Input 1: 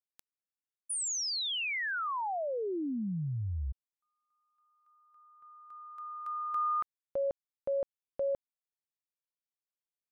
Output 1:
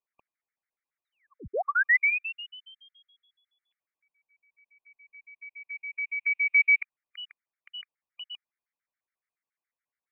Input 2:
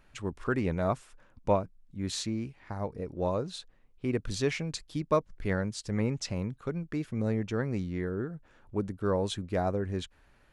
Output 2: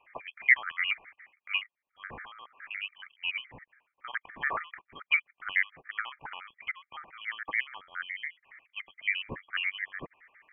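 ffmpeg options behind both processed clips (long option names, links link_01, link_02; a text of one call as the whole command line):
ffmpeg -i in.wav -af "highpass=frequency=1400:width_type=q:width=2.5,lowpass=frequency=3000:width_type=q:width=0.5098,lowpass=frequency=3000:width_type=q:width=0.6013,lowpass=frequency=3000:width_type=q:width=0.9,lowpass=frequency=3000:width_type=q:width=2.563,afreqshift=-3500,afftfilt=real='re*gt(sin(2*PI*7.1*pts/sr)*(1-2*mod(floor(b*sr/1024/1200),2)),0)':imag='im*gt(sin(2*PI*7.1*pts/sr)*(1-2*mod(floor(b*sr/1024/1200),2)),0)':win_size=1024:overlap=0.75,volume=7.5dB" out.wav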